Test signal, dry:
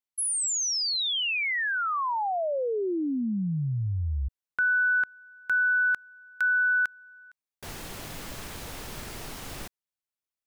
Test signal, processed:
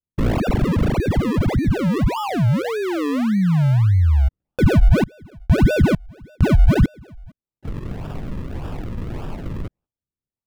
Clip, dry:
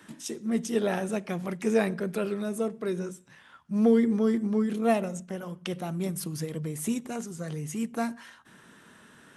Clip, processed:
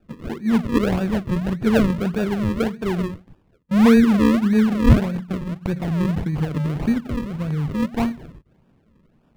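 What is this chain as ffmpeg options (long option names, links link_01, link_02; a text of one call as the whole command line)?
ffmpeg -i in.wav -af "acrusher=samples=41:mix=1:aa=0.000001:lfo=1:lforange=41:lforate=1.7,bass=frequency=250:gain=10,treble=frequency=4000:gain=-10,agate=range=-14dB:threshold=-36dB:ratio=16:release=337:detection=rms,volume=4dB" out.wav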